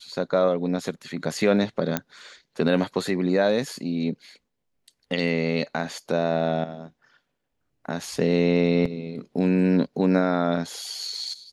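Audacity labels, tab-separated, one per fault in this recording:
1.970000	1.970000	click −8 dBFS
8.850000	8.850000	drop-out 4.9 ms

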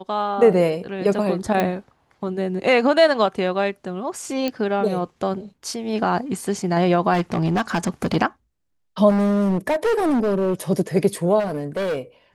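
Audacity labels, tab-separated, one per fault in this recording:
1.600000	1.600000	click −8 dBFS
4.480000	4.480000	click −11 dBFS
7.130000	8.170000	clipping −16 dBFS
9.090000	10.540000	clipping −16.5 dBFS
11.390000	11.990000	clipping −20.5 dBFS

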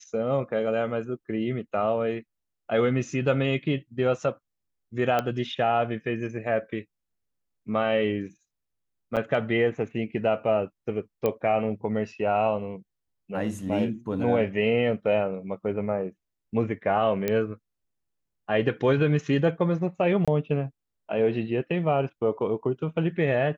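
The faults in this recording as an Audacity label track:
5.190000	5.190000	click −12 dBFS
9.160000	9.170000	drop-out 7.7 ms
11.260000	11.260000	click −13 dBFS
17.280000	17.280000	click −12 dBFS
20.250000	20.280000	drop-out 26 ms

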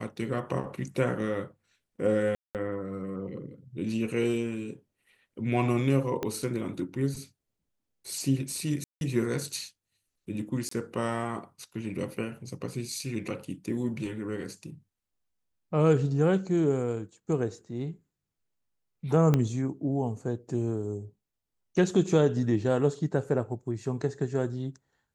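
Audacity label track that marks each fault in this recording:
2.350000	2.550000	drop-out 198 ms
6.230000	6.230000	click −17 dBFS
8.840000	9.010000	drop-out 171 ms
10.690000	10.710000	drop-out 24 ms
19.340000	19.340000	click −12 dBFS

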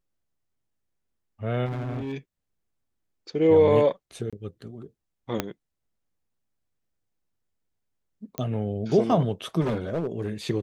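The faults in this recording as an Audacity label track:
1.650000	2.130000	clipping −28 dBFS
4.300000	4.330000	drop-out 26 ms
5.400000	5.400000	click −10 dBFS
8.380000	8.380000	click −15 dBFS
9.600000	10.290000	clipping −22.5 dBFS

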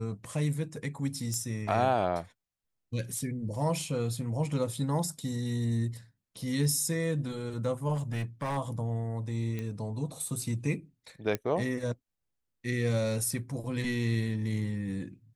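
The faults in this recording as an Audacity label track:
1.340000	1.340000	click −22 dBFS
7.940000	8.580000	clipping −28.5 dBFS
9.590000	9.590000	click −23 dBFS
11.350000	11.350000	click −16 dBFS

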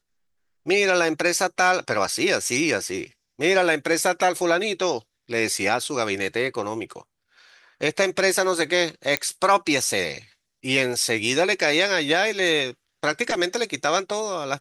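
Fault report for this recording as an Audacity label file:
9.170000	9.170000	click −5 dBFS

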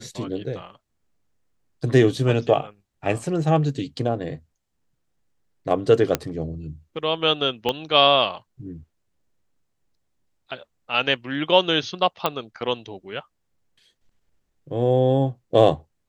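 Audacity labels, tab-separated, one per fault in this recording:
6.150000	6.150000	click −5 dBFS
7.690000	7.690000	click −10 dBFS
12.260000	12.260000	click −7 dBFS

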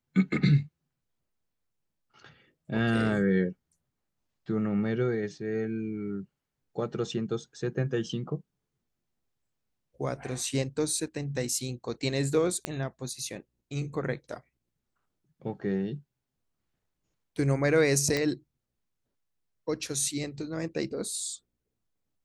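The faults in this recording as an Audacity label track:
12.650000	12.650000	click −15 dBFS
18.170000	18.170000	click −14 dBFS

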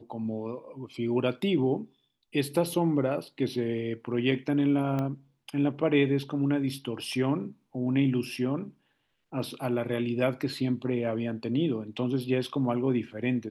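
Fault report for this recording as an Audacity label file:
4.990000	4.990000	click −19 dBFS

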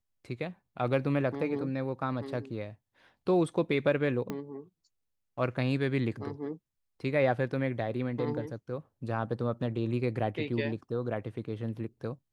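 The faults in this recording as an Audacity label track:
4.300000	4.300000	click −21 dBFS

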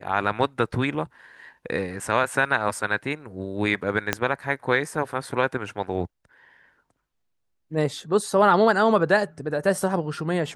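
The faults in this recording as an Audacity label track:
4.130000	4.130000	click −6 dBFS

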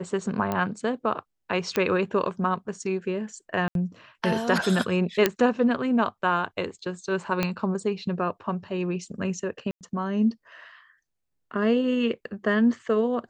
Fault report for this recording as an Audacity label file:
0.520000	0.520000	click −14 dBFS
1.760000	1.760000	click −10 dBFS
3.680000	3.750000	drop-out 72 ms
5.260000	5.260000	click −5 dBFS
7.430000	7.430000	click −10 dBFS
9.710000	9.810000	drop-out 98 ms

